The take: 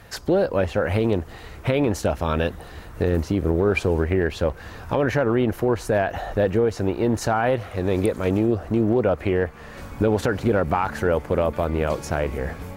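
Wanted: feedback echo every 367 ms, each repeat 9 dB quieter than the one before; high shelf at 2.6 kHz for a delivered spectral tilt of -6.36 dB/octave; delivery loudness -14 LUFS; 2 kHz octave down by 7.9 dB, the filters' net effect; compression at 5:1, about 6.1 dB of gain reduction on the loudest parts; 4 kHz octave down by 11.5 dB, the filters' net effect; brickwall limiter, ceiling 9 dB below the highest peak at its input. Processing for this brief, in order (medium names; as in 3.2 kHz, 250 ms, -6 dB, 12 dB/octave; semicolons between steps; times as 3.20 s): peaking EQ 2 kHz -6.5 dB; treble shelf 2.6 kHz -7 dB; peaking EQ 4 kHz -7 dB; compression 5:1, threshold -23 dBFS; peak limiter -22.5 dBFS; feedback delay 367 ms, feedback 35%, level -9 dB; trim +18 dB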